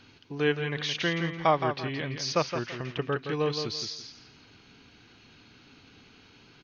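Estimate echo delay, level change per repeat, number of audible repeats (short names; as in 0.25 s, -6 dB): 0.168 s, -11.5 dB, 3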